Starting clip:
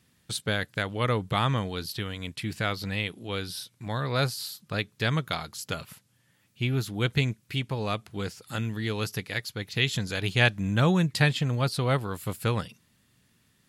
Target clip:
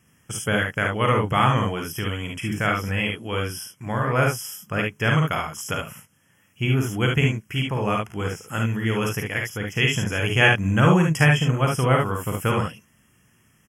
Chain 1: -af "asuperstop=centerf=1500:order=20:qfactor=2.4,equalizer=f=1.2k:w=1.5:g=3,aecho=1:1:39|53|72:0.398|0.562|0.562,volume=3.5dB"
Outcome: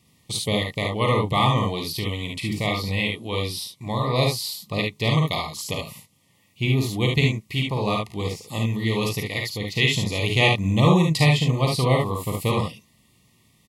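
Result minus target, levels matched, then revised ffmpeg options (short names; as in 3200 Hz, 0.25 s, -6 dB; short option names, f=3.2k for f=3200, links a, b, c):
4000 Hz band +4.5 dB
-af "asuperstop=centerf=4100:order=20:qfactor=2.4,equalizer=f=1.2k:w=1.5:g=3,aecho=1:1:39|53|72:0.398|0.562|0.562,volume=3.5dB"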